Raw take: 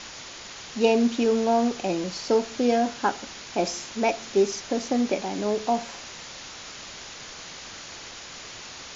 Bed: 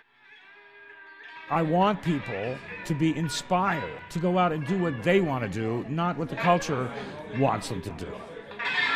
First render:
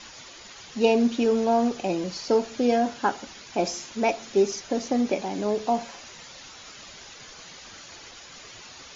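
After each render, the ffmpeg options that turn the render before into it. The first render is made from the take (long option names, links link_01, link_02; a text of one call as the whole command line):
ffmpeg -i in.wav -af "afftdn=noise_reduction=8:noise_floor=-41" out.wav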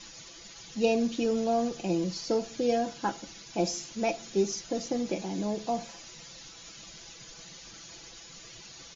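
ffmpeg -i in.wav -af "equalizer=frequency=1200:width=0.35:gain=-9.5,aecho=1:1:6:0.57" out.wav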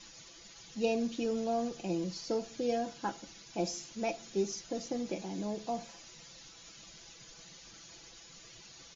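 ffmpeg -i in.wav -af "volume=-5.5dB" out.wav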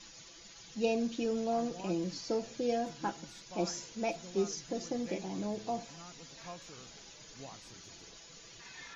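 ffmpeg -i in.wav -i bed.wav -filter_complex "[1:a]volume=-25.5dB[link_01];[0:a][link_01]amix=inputs=2:normalize=0" out.wav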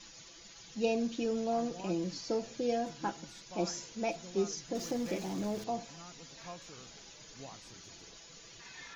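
ffmpeg -i in.wav -filter_complex "[0:a]asettb=1/sr,asplit=3[link_01][link_02][link_03];[link_01]atrim=end=4.754[link_04];[link_02]atrim=start=4.75:end=5.64,asetpts=PTS-STARTPTS,afade=type=in:duration=0.004:curve=qsin,afade=type=out:start_time=0.886:duration=0.004:curve=qsin,aeval=exprs='val(0)+0.5*0.00631*sgn(val(0))':channel_layout=same[link_05];[link_03]atrim=start=5.636[link_06];[link_04][link_05]acrossfade=duration=0.004:curve1=hsin:curve2=qsin[link_07];[link_07][link_06]acrossfade=duration=0.004:curve1=qsin:curve2=hsin" out.wav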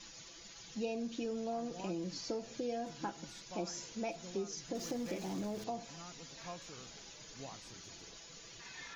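ffmpeg -i in.wav -af "acompressor=threshold=-37dB:ratio=3" out.wav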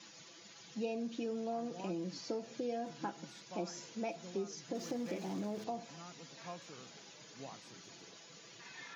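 ffmpeg -i in.wav -af "highpass=frequency=130:width=0.5412,highpass=frequency=130:width=1.3066,highshelf=frequency=5300:gain=-7.5" out.wav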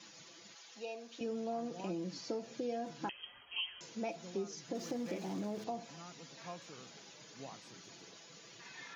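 ffmpeg -i in.wav -filter_complex "[0:a]asettb=1/sr,asplit=3[link_01][link_02][link_03];[link_01]atrim=end=0.554[link_04];[link_02]atrim=start=0.55:end=1.21,asetpts=PTS-STARTPTS,afade=type=in:duration=0.004:curve=qsin,afade=type=out:start_time=0.656:duration=0.004:curve=qsin,highpass=600[link_05];[link_03]atrim=start=1.206[link_06];[link_04][link_05]acrossfade=duration=0.004:curve1=hsin:curve2=qsin[link_07];[link_07][link_06]acrossfade=duration=0.004:curve1=qsin:curve2=hsin,asettb=1/sr,asplit=3[link_08][link_09][link_10];[link_08]atrim=end=3.094[link_11];[link_09]atrim=start=3.09:end=3.81,asetpts=PTS-STARTPTS,afade=type=in:duration=0.004:curve=qsin,afade=type=out:start_time=0.716:duration=0.004:curve=qsin,lowpass=frequency=2900:width_type=q:width=0.5098,lowpass=frequency=2900:width_type=q:width=0.6013,lowpass=frequency=2900:width_type=q:width=0.9,lowpass=frequency=2900:width_type=q:width=2.563,afreqshift=-3400[link_12];[link_10]atrim=start=3.806[link_13];[link_11][link_12]acrossfade=duration=0.004:curve1=hsin:curve2=qsin[link_14];[link_14][link_13]acrossfade=duration=0.004:curve1=qsin:curve2=hsin" out.wav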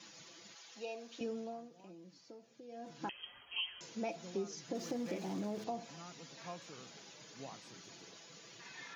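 ffmpeg -i in.wav -filter_complex "[0:a]asplit=3[link_01][link_02][link_03];[link_01]atrim=end=1.7,asetpts=PTS-STARTPTS,afade=type=out:start_time=1.21:duration=0.49:silence=0.16788[link_04];[link_02]atrim=start=1.7:end=2.67,asetpts=PTS-STARTPTS,volume=-15.5dB[link_05];[link_03]atrim=start=2.67,asetpts=PTS-STARTPTS,afade=type=in:duration=0.49:silence=0.16788[link_06];[link_04][link_05][link_06]concat=n=3:v=0:a=1" out.wav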